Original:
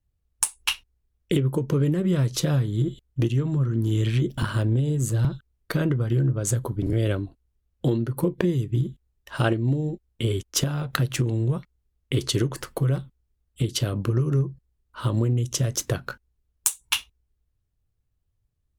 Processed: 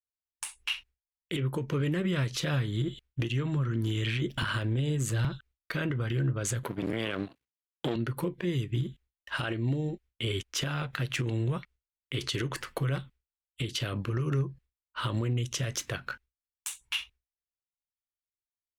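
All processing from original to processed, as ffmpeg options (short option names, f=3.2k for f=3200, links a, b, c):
-filter_complex "[0:a]asettb=1/sr,asplit=3[a][b][c];[a]atrim=end=6.634[d];[b]atrim=start=6.63:end=7.96,asetpts=PTS-STARTPTS,afade=t=in:d=0.004:c=qsin,afade=t=out:st=1.326:d=0.004:c=qsin,aeval=exprs='if(lt(val(0),0),0.251*val(0),val(0))':c=same,highpass=170,acontrast=89[e];[c]atrim=start=7.956[f];[d][e]acrossfade=d=0.004:c1=hsin:c2=qsin[g];[g][f]acrossfade=d=0.004:c1=qsin:c2=hsin,agate=range=-33dB:threshold=-44dB:ratio=3:detection=peak,equalizer=f=2.3k:w=0.61:g=13.5,alimiter=limit=-15.5dB:level=0:latency=1:release=66,volume=-5.5dB"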